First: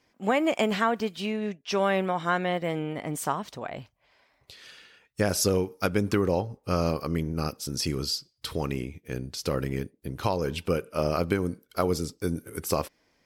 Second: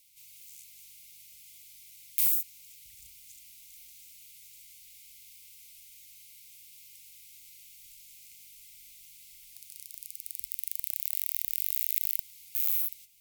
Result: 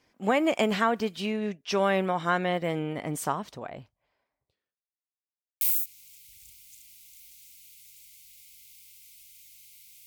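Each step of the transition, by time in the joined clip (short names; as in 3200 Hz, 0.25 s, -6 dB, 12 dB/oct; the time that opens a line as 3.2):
first
3.05–4.83 studio fade out
4.83–5.61 mute
5.61 switch to second from 2.18 s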